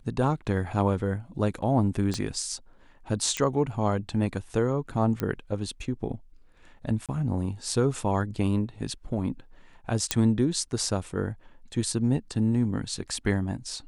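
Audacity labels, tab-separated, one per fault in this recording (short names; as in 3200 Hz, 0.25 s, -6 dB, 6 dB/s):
2.140000	2.140000	pop -18 dBFS
3.370000	3.370000	pop -13 dBFS
5.200000	5.200000	pop -15 dBFS
7.060000	7.090000	gap 27 ms
10.110000	10.110000	pop -6 dBFS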